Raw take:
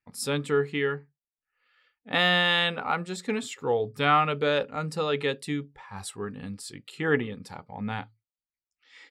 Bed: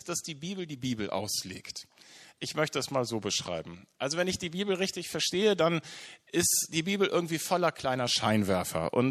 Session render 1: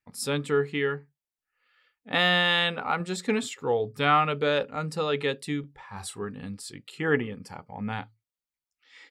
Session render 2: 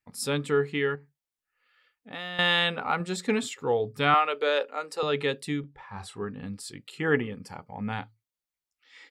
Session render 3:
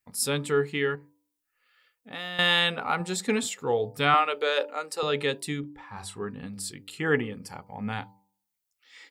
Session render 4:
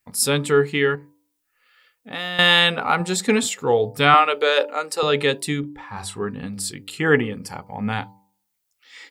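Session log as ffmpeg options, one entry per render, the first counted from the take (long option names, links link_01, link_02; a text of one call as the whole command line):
ffmpeg -i in.wav -filter_complex "[0:a]asettb=1/sr,asplit=3[link_01][link_02][link_03];[link_01]atrim=end=5.604[link_04];[link_02]atrim=start=5.6:end=6.23,asetpts=PTS-STARTPTS,afade=type=in:duration=0.004:curve=qsin,afade=type=out:start_time=0.626:duration=0.004:curve=qsin,asplit=2[link_05][link_06];[link_06]adelay=34,volume=-10dB[link_07];[link_05][link_07]amix=inputs=2:normalize=0,atrim=end_sample=27783[link_08];[link_03]atrim=start=6.226[link_09];[link_04][link_08]acrossfade=duration=0.004:curve1=hsin:curve2=qsin[link_10];[link_10][link_09]acrossfade=duration=0.004:curve1=qsin:curve2=hsin,asettb=1/sr,asplit=3[link_11][link_12][link_13];[link_11]atrim=end=6.984[link_14];[link_12]atrim=start=6.98:end=7.93,asetpts=PTS-STARTPTS,afade=type=in:duration=0.004:curve=qsin,afade=type=out:start_time=0.946:duration=0.004:curve=qsin,asuperstop=centerf=3800:order=4:qfactor=4.2[link_15];[link_13]atrim=start=7.926[link_16];[link_14][link_15]acrossfade=duration=0.004:curve1=hsin:curve2=qsin[link_17];[link_17][link_16]acrossfade=duration=0.004:curve1=qsin:curve2=hsin,asplit=3[link_18][link_19][link_20];[link_18]atrim=end=3.002[link_21];[link_19]atrim=start=2.998:end=3.492,asetpts=PTS-STARTPTS,volume=3dB[link_22];[link_20]atrim=start=3.488[link_23];[link_21][link_22]acrossfade=duration=0.004:curve1=hsin:curve2=hsin[link_24];[link_24][link_23]acrossfade=duration=0.004:curve1=hsin:curve2=hsin" out.wav
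ffmpeg -i in.wav -filter_complex "[0:a]asettb=1/sr,asplit=3[link_01][link_02][link_03];[link_01]atrim=end=0.954[link_04];[link_02]atrim=start=0.95:end=2.39,asetpts=PTS-STARTPTS,afade=type=in:duration=0.004:curve=qsin,afade=type=out:start_time=1.436:duration=0.004:curve=qsin,acompressor=threshold=-45dB:ratio=2:attack=3.2:release=140:knee=1:detection=peak[link_05];[link_03]atrim=start=2.386[link_06];[link_04][link_05]acrossfade=duration=0.004:curve1=hsin:curve2=qsin[link_07];[link_07][link_06]acrossfade=duration=0.004:curve1=qsin:curve2=hsin,asettb=1/sr,asplit=3[link_08][link_09][link_10];[link_08]atrim=end=4.144[link_11];[link_09]atrim=start=4.14:end=5.03,asetpts=PTS-STARTPTS,afade=type=in:duration=0.004:curve=qsin,afade=type=out:start_time=0.886:duration=0.004:curve=qsin,highpass=frequency=360:width=0.5412,highpass=frequency=360:width=1.3066[link_12];[link_10]atrim=start=5.026[link_13];[link_11][link_12]acrossfade=duration=0.004:curve1=hsin:curve2=qsin[link_14];[link_14][link_13]acrossfade=duration=0.004:curve1=qsin:curve2=hsin,asettb=1/sr,asplit=3[link_15][link_16][link_17];[link_15]atrim=end=5.604[link_18];[link_16]atrim=start=5.6:end=6.53,asetpts=PTS-STARTPTS,afade=type=in:duration=0.004:curve=qsin,afade=type=out:start_time=0.926:duration=0.004:curve=qsin,aemphasis=mode=reproduction:type=50fm[link_19];[link_17]atrim=start=6.526[link_20];[link_18][link_19]acrossfade=duration=0.004:curve1=hsin:curve2=qsin[link_21];[link_21][link_20]acrossfade=duration=0.004:curve1=qsin:curve2=hsin" out.wav
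ffmpeg -i in.wav -af "highshelf=frequency=6800:gain=10.5,bandreject=frequency=97.84:width_type=h:width=4,bandreject=frequency=195.68:width_type=h:width=4,bandreject=frequency=293.52:width_type=h:width=4,bandreject=frequency=391.36:width_type=h:width=4,bandreject=frequency=489.2:width_type=h:width=4,bandreject=frequency=587.04:width_type=h:width=4,bandreject=frequency=684.88:width_type=h:width=4,bandreject=frequency=782.72:width_type=h:width=4,bandreject=frequency=880.56:width_type=h:width=4,bandreject=frequency=978.4:width_type=h:width=4" out.wav
ffmpeg -i in.wav -af "volume=7.5dB" out.wav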